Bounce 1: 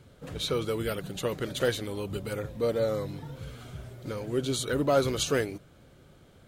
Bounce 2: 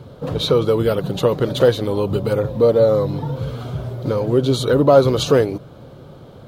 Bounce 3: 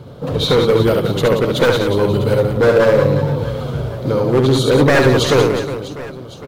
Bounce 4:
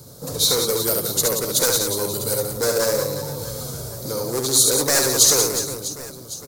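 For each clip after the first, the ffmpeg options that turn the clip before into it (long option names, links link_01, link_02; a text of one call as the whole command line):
ffmpeg -i in.wav -filter_complex "[0:a]equalizer=frequency=125:width_type=o:width=1:gain=9,equalizer=frequency=250:width_type=o:width=1:gain=4,equalizer=frequency=500:width_type=o:width=1:gain=8,equalizer=frequency=1000:width_type=o:width=1:gain=9,equalizer=frequency=2000:width_type=o:width=1:gain=-5,equalizer=frequency=4000:width_type=o:width=1:gain=5,equalizer=frequency=8000:width_type=o:width=1:gain=-7,asplit=2[link_01][link_02];[link_02]acompressor=threshold=-25dB:ratio=6,volume=1.5dB[link_03];[link_01][link_03]amix=inputs=2:normalize=0,volume=1dB" out.wav
ffmpeg -i in.wav -af "aeval=exprs='0.316*(abs(mod(val(0)/0.316+3,4)-2)-1)':channel_layout=same,aecho=1:1:70|182|361.2|647.9|1107:0.631|0.398|0.251|0.158|0.1,volume=2.5dB" out.wav
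ffmpeg -i in.wav -filter_complex "[0:a]acrossover=split=350[link_01][link_02];[link_01]alimiter=limit=-18dB:level=0:latency=1:release=132[link_03];[link_03][link_02]amix=inputs=2:normalize=0,aexciter=amount=11.2:drive=8.8:freq=4700,volume=-9dB" out.wav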